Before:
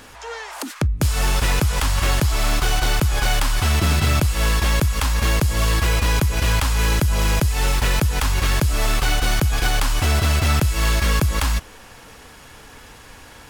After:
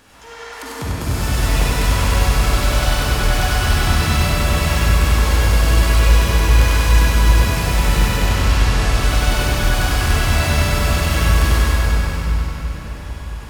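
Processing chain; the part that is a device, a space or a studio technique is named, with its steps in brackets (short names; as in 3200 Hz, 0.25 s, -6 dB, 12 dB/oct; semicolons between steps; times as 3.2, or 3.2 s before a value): 8.11–8.91 LPF 6400 Hz -> 11000 Hz; thinning echo 97 ms, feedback 73%, high-pass 230 Hz, level -4.5 dB; cathedral (reverb RT60 5.2 s, pre-delay 43 ms, DRR -8 dB); gain -8 dB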